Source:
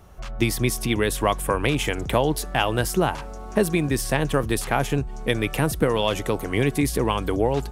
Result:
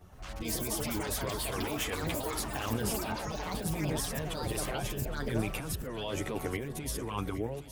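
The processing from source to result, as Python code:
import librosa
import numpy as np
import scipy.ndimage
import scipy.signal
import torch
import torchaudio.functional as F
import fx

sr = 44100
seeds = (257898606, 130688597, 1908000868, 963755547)

p1 = fx.fade_out_tail(x, sr, length_s=0.55)
p2 = fx.over_compress(p1, sr, threshold_db=-26.0, ratio=-1.0)
p3 = fx.chorus_voices(p2, sr, voices=2, hz=0.39, base_ms=11, depth_ms=2.3, mix_pct=60)
p4 = fx.echo_pitch(p3, sr, ms=123, semitones=6, count=3, db_per_echo=-3.0)
p5 = fx.brickwall_lowpass(p4, sr, high_hz=6800.0, at=(3.05, 3.48))
p6 = p5 + fx.echo_feedback(p5, sr, ms=815, feedback_pct=45, wet_db=-13.5, dry=0)
y = p6 * librosa.db_to_amplitude(-7.0)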